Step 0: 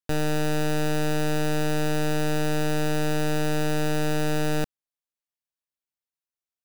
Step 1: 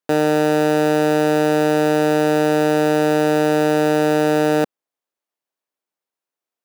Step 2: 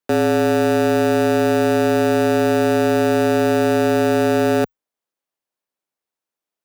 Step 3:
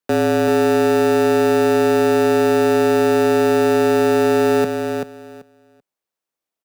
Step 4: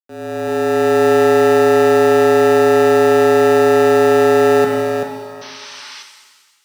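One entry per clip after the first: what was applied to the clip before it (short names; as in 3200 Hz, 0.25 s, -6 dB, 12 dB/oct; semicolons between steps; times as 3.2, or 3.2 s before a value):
HPF 330 Hz 12 dB/oct; tilt shelf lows +6.5 dB, about 1400 Hz; gain +8.5 dB
frequency shift -39 Hz
feedback echo 0.386 s, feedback 17%, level -6 dB
opening faded in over 1.07 s; painted sound noise, 5.41–6.03, 810–6200 Hz -36 dBFS; shimmer reverb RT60 1.4 s, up +7 st, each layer -8 dB, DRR 4 dB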